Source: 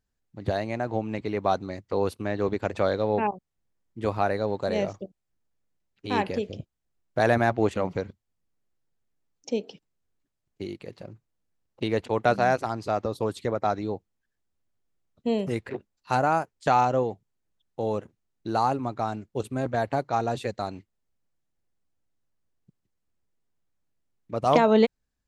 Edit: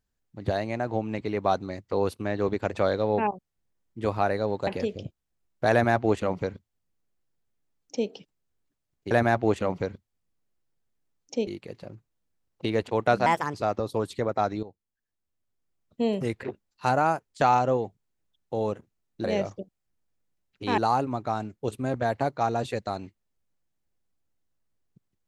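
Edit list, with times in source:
4.67–6.21 s: move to 18.50 s
7.26–9.62 s: copy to 10.65 s
12.44–12.80 s: speed 129%
13.89–15.29 s: fade in, from -14.5 dB

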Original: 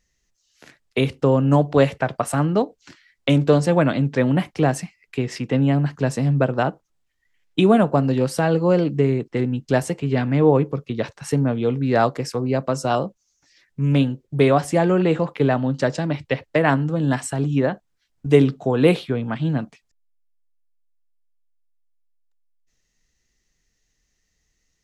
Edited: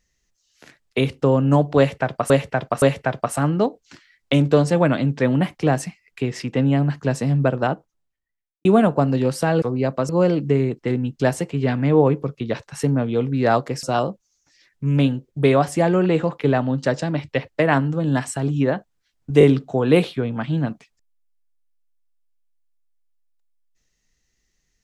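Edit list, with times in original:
1.78–2.30 s: loop, 3 plays
6.52–7.61 s: studio fade out
12.32–12.79 s: move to 8.58 s
18.35 s: stutter 0.02 s, 3 plays

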